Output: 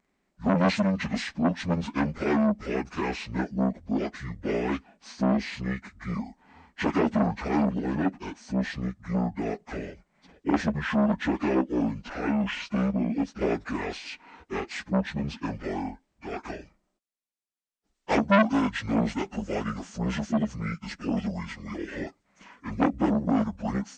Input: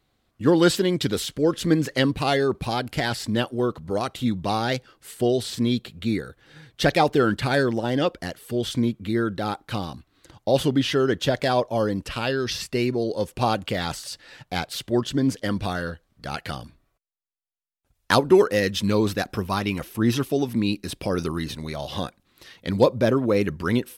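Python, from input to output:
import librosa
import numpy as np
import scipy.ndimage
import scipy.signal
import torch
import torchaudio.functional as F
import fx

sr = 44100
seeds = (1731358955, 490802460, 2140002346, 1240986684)

y = fx.pitch_bins(x, sr, semitones=-11.0)
y = fx.low_shelf_res(y, sr, hz=160.0, db=-7.0, q=3.0)
y = fx.transformer_sat(y, sr, knee_hz=1200.0)
y = y * librosa.db_to_amplitude(-2.0)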